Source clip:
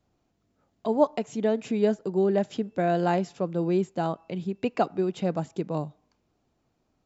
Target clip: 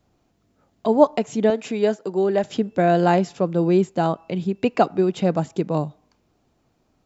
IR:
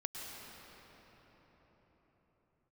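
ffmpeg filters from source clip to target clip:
-filter_complex "[0:a]asettb=1/sr,asplit=3[link_01][link_02][link_03];[link_01]atrim=end=1.504[link_04];[link_02]atrim=start=1.5:end=2.44,asetpts=PTS-STARTPTS,afade=type=in:duration=0.004:curve=qsin,afade=type=out:start_time=0.936:duration=0.004:curve=qsin,highpass=frequency=440:poles=1[link_05];[link_03]atrim=start=2.436[link_06];[link_04][link_05]acrossfade=duration=0.004:curve1=hsin:curve2=qsin[link_07];[link_07][link_06]acrossfade=duration=0.004:curve1=qsin:curve2=hsin,volume=7dB"

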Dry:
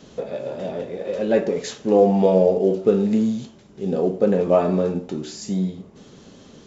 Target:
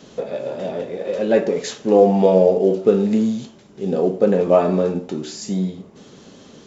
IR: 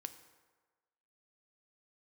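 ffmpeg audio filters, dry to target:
-af "lowshelf=frequency=95:gain=-9.5,volume=3dB"

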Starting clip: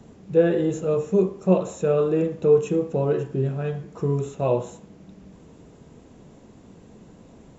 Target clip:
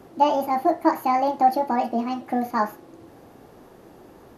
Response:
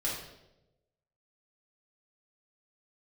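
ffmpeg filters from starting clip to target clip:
-af "asetrate=76440,aresample=44100"

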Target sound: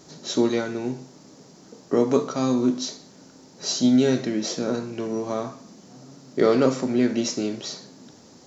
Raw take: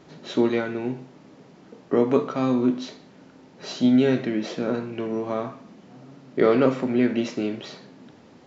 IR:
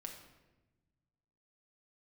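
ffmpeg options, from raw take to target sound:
-af "highshelf=frequency=4000:width_type=q:width=1.5:gain=12.5"

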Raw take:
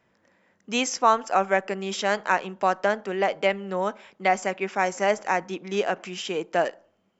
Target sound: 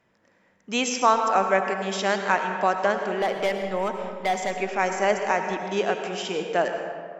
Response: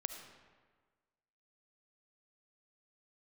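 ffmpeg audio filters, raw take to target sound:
-filter_complex "[0:a]asettb=1/sr,asplit=3[link_01][link_02][link_03];[link_01]atrim=end=3.124[link_04];[link_02]atrim=start=3.12:end=4.51,asetpts=PTS-STARTPTS,afade=type=in:duration=0.004:curve=qsin,afade=type=out:start_time=1.386:duration=0.004:curve=qsin,asoftclip=type=hard:threshold=-18.5dB[link_05];[link_03]atrim=start=4.506[link_06];[link_04][link_05]acrossfade=duration=0.004:curve1=hsin:curve2=qsin[link_07];[link_07][link_06]acrossfade=duration=0.004:curve1=qsin:curve2=hsin[link_08];[1:a]atrim=start_sample=2205,asetrate=30870,aresample=44100[link_09];[link_08][link_09]afir=irnorm=-1:irlink=0"

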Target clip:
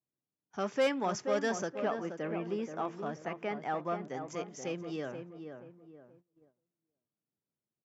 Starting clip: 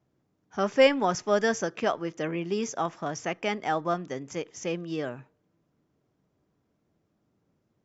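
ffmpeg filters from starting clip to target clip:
ffmpeg -i in.wav -filter_complex "[0:a]asettb=1/sr,asplit=3[link_01][link_02][link_03];[link_01]atrim=end=1.774[link_04];[link_02]atrim=start=1.77:end=4.14,asetpts=PTS-STARTPTS,afade=type=in:duration=0.004:curve=qsin,afade=type=out:start_time=2.366:duration=0.004:curve=qsin,acrossover=split=2500[link_05][link_06];[link_06]acompressor=threshold=-54dB:ratio=4:attack=1:release=60[link_07];[link_05][link_07]amix=inputs=2:normalize=0[link_08];[link_03]atrim=start=4.136[link_09];[link_04][link_08]acrossfade=duration=0.004:curve1=hsin:curve2=qsin[link_10];[link_10][link_09]acrossfade=duration=0.004:curve1=qsin:curve2=hsin,asoftclip=type=tanh:threshold=-16dB,highpass=100,asplit=2[link_11][link_12];[link_12]adelay=478,lowpass=frequency=1400:poles=1,volume=-7dB,asplit=2[link_13][link_14];[link_14]adelay=478,lowpass=frequency=1400:poles=1,volume=0.38,asplit=2[link_15][link_16];[link_16]adelay=478,lowpass=frequency=1400:poles=1,volume=0.38,asplit=2[link_17][link_18];[link_18]adelay=478,lowpass=frequency=1400:poles=1,volume=0.38[link_19];[link_11][link_13][link_15][link_17][link_19]amix=inputs=5:normalize=0,agate=range=-17dB:threshold=-55dB:ratio=16:detection=peak,volume=-6dB" out.wav

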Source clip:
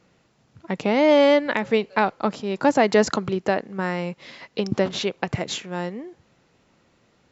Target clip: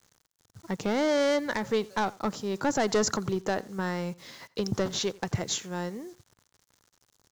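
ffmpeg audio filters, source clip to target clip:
ffmpeg -i in.wav -filter_complex "[0:a]acrusher=bits=8:mix=0:aa=0.000001,aeval=exprs='(tanh(5.01*val(0)+0.05)-tanh(0.05))/5.01':channel_layout=same,equalizer=frequency=100:width_type=o:width=0.67:gain=4,equalizer=frequency=250:width_type=o:width=0.67:gain=-3,equalizer=frequency=630:width_type=o:width=0.67:gain=-4,equalizer=frequency=2500:width_type=o:width=0.67:gain=-7,equalizer=frequency=6300:width_type=o:width=0.67:gain=7,asplit=2[link_01][link_02];[link_02]aecho=0:1:87:0.075[link_03];[link_01][link_03]amix=inputs=2:normalize=0,volume=-2.5dB" out.wav

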